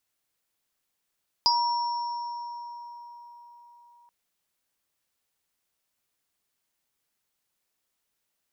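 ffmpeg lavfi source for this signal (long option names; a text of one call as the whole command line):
ffmpeg -f lavfi -i "aevalsrc='0.0891*pow(10,-3*t/4.6)*sin(2*PI*953*t)+0.178*pow(10,-3*t/0.21)*sin(2*PI*4940*t)+0.0447*pow(10,-3*t/2.43)*sin(2*PI*5460*t)':duration=2.63:sample_rate=44100" out.wav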